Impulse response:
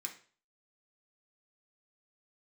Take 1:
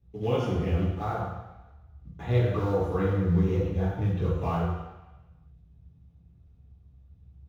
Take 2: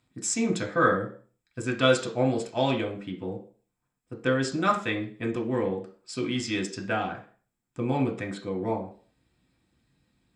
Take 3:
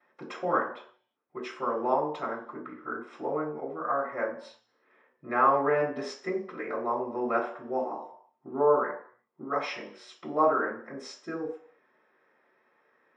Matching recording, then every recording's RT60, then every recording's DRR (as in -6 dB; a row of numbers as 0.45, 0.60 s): 2; 1.0, 0.40, 0.65 s; -8.5, 0.5, -14.0 dB